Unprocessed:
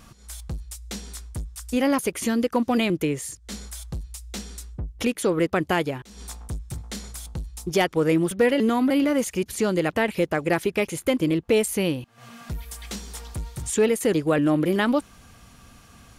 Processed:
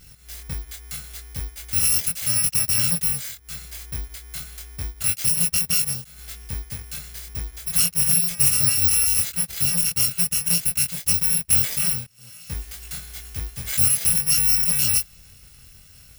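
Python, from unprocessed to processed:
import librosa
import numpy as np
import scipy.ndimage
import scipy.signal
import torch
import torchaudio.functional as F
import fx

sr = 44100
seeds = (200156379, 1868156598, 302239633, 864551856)

y = fx.bit_reversed(x, sr, seeds[0], block=128)
y = fx.band_shelf(y, sr, hz=520.0, db=-8.5, octaves=2.8)
y = fx.doubler(y, sr, ms=23.0, db=-3)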